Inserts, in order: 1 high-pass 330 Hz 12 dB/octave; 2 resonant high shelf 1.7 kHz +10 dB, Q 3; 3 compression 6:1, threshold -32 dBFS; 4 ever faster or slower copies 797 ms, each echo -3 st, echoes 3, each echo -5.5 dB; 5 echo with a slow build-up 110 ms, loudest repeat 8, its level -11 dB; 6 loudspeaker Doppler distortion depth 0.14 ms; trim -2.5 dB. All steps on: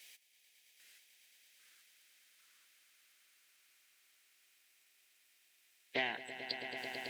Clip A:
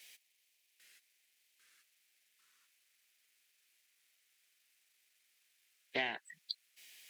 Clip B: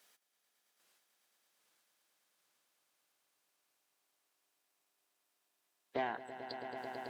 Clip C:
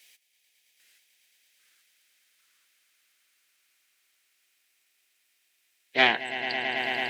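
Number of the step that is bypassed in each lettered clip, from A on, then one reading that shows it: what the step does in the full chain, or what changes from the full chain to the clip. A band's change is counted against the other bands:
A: 5, momentary loudness spread change +13 LU; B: 2, 4 kHz band -12.5 dB; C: 3, mean gain reduction 10.5 dB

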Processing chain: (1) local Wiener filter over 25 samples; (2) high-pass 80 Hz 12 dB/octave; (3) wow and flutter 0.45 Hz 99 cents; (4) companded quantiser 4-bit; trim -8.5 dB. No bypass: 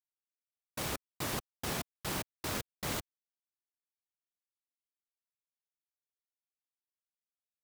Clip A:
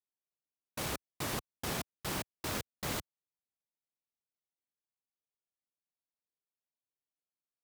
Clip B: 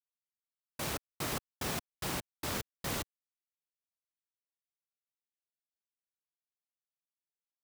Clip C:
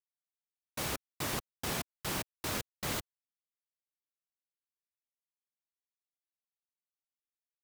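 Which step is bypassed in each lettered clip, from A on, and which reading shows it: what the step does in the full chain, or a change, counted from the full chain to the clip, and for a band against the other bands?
4, distortion -13 dB; 3, crest factor change +6.0 dB; 1, crest factor change +5.5 dB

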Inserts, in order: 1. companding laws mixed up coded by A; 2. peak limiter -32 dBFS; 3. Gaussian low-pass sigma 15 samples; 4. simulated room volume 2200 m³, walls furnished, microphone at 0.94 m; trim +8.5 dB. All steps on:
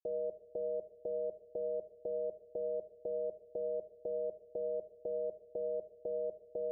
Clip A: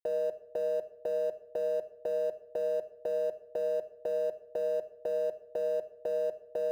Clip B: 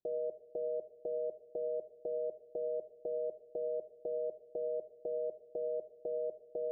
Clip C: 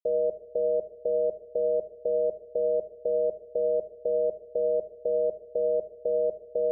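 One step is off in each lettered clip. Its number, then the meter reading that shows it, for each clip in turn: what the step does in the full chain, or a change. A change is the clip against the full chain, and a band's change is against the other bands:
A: 3, loudness change +6.0 LU; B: 1, distortion -26 dB; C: 2, mean gain reduction 11.0 dB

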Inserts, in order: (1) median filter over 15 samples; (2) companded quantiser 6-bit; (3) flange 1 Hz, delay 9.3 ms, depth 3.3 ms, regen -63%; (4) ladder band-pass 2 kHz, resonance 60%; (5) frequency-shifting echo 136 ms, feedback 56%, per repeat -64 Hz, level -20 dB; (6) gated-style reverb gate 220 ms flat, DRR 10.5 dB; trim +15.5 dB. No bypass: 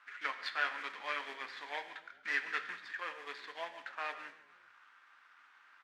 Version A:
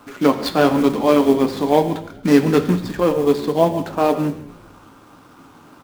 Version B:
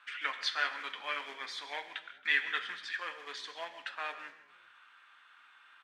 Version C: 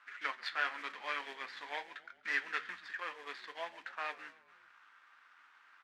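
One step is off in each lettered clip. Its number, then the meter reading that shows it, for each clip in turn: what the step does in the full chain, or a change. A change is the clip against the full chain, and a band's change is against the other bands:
4, 250 Hz band +24.5 dB; 1, 8 kHz band +7.0 dB; 6, echo-to-direct -9.5 dB to -18.5 dB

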